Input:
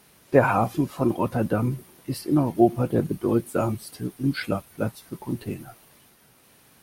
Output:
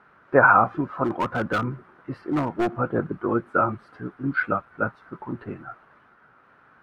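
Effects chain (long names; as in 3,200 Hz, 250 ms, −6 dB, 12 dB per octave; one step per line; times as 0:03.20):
low-pass with resonance 1,400 Hz, resonance Q 4.6
low-shelf EQ 280 Hz −6 dB
0:01.04–0:02.72: gain into a clipping stage and back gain 19 dB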